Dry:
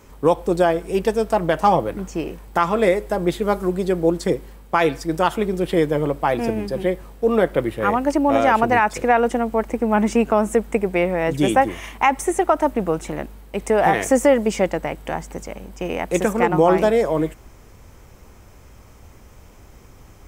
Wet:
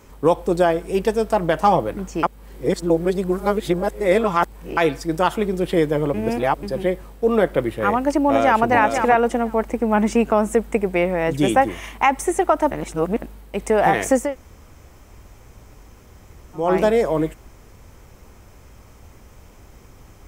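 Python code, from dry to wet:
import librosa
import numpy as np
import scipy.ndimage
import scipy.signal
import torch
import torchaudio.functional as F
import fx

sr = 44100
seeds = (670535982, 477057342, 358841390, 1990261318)

y = fx.echo_throw(x, sr, start_s=8.24, length_s=0.42, ms=490, feedback_pct=10, wet_db=-6.5)
y = fx.edit(y, sr, fx.reverse_span(start_s=2.23, length_s=2.54),
    fx.reverse_span(start_s=6.14, length_s=0.49),
    fx.reverse_span(start_s=12.71, length_s=0.51),
    fx.room_tone_fill(start_s=14.24, length_s=2.41, crossfade_s=0.24), tone=tone)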